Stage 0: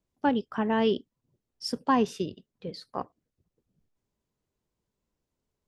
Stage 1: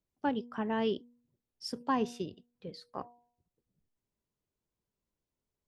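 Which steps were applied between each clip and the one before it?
de-hum 240.2 Hz, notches 4; trim -6.5 dB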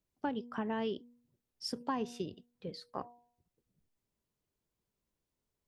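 compression 3:1, threshold -35 dBFS, peak gain reduction 7.5 dB; trim +1.5 dB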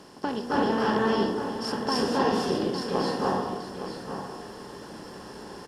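spectral levelling over time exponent 0.4; delay 863 ms -9.5 dB; reverberation RT60 1.1 s, pre-delay 253 ms, DRR -6 dB; trim +2.5 dB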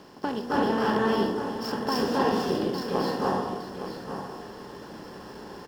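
median filter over 5 samples

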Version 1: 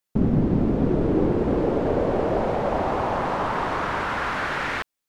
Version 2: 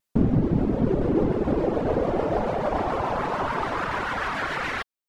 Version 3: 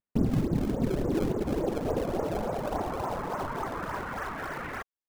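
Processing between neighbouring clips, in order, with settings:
reverb removal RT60 0.91 s; vibrato with a chosen wave square 6.9 Hz, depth 100 cents; trim +1 dB
low-pass 1.9 kHz 12 dB/octave; in parallel at -8 dB: decimation with a swept rate 27×, swing 160% 3.5 Hz; on the sum: trim -8 dB

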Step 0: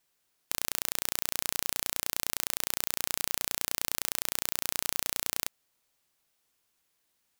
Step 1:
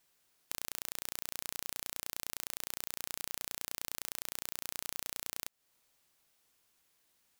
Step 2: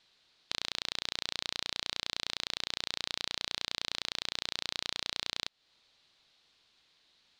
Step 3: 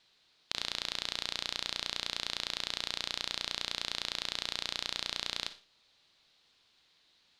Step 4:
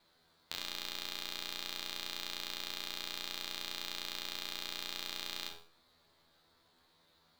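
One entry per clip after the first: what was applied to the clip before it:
compression 3:1, threshold -38 dBFS, peak gain reduction 11 dB; trim +2 dB
resonant low-pass 4 kHz, resonance Q 3.5; trim +4.5 dB
Schroeder reverb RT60 0.38 s, DRR 11 dB
median filter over 15 samples; feedback comb 83 Hz, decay 0.39 s, harmonics all, mix 90%; de-hum 136.4 Hz, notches 27; trim +15.5 dB

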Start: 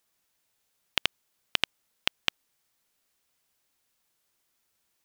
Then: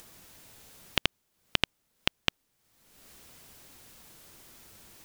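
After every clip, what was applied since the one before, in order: bass shelf 460 Hz +10.5 dB; upward compressor, threshold -34 dBFS; trim -1 dB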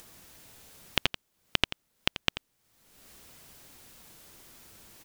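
delay 87 ms -12.5 dB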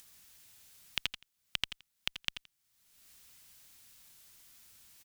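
amplifier tone stack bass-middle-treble 5-5-5; delay 83 ms -14.5 dB; trim +1 dB

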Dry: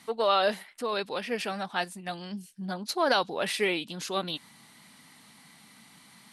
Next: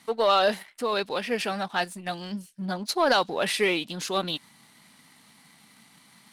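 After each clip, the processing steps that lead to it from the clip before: waveshaping leveller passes 1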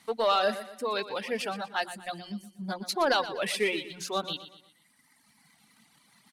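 hum notches 60/120/180/240/300/360 Hz; reverb removal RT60 1.9 s; feedback delay 120 ms, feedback 41%, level -13.5 dB; trim -3 dB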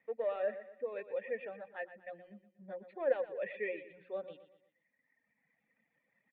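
cascade formant filter e; trim +1 dB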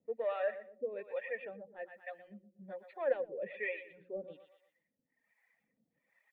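harmonic tremolo 1.2 Hz, depth 100%, crossover 540 Hz; trim +5 dB

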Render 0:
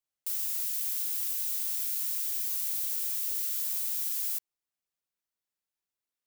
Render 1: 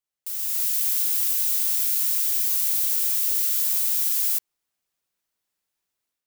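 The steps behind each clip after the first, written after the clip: level rider gain up to 9 dB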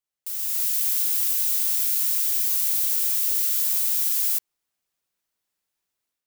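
no audible change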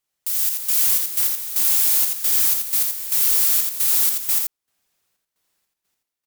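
sine folder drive 10 dB, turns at -9 dBFS; trance gate "xxxxx..xxx..x..." 154 bpm -12 dB; delay 84 ms -4.5 dB; trim -5 dB

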